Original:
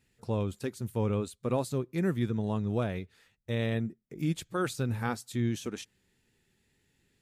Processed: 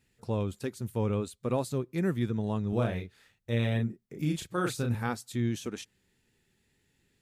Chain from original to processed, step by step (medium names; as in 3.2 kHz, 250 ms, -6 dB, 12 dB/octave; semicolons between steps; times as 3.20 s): 2.69–4.95 s: doubling 34 ms -4 dB